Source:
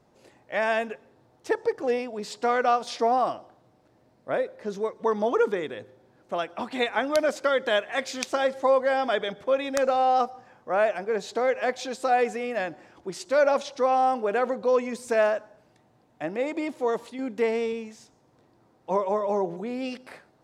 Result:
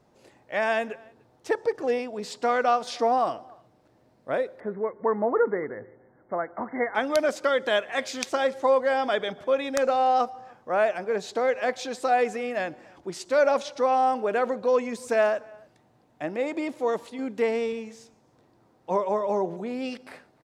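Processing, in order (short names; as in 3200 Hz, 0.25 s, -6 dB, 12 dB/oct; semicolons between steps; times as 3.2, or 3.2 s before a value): 4.6–6.95 brick-wall FIR low-pass 2200 Hz; outdoor echo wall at 50 m, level -26 dB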